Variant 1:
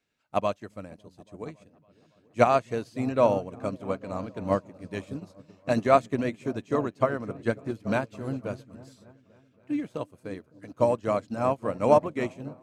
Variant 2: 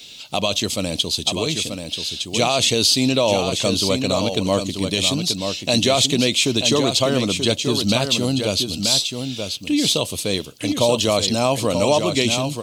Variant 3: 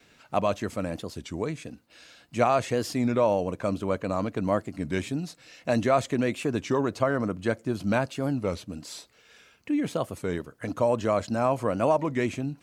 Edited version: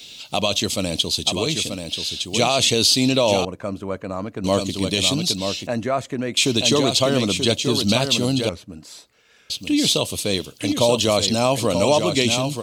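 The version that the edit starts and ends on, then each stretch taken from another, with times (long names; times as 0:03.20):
2
0:03.45–0:04.44: punch in from 3
0:05.67–0:06.37: punch in from 3
0:08.49–0:09.50: punch in from 3
not used: 1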